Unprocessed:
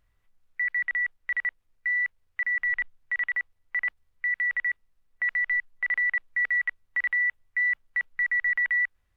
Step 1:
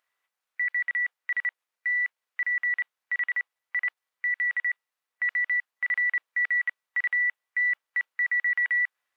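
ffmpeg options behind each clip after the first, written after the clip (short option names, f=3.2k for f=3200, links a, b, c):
-af "highpass=750"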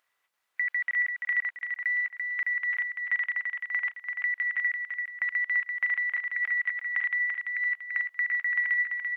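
-filter_complex "[0:a]acompressor=threshold=-30dB:ratio=6,asplit=2[a][b];[b]aecho=0:1:339|678|1017|1356|1695:0.562|0.231|0.0945|0.0388|0.0159[c];[a][c]amix=inputs=2:normalize=0,volume=3.5dB"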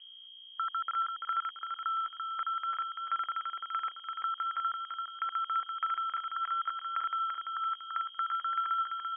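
-af "aeval=exprs='val(0)+0.00562*(sin(2*PI*60*n/s)+sin(2*PI*2*60*n/s)/2+sin(2*PI*3*60*n/s)/3+sin(2*PI*4*60*n/s)/4+sin(2*PI*5*60*n/s)/5)':c=same,lowpass=f=2.8k:t=q:w=0.5098,lowpass=f=2.8k:t=q:w=0.6013,lowpass=f=2.8k:t=q:w=0.9,lowpass=f=2.8k:t=q:w=2.563,afreqshift=-3300,volume=-5dB"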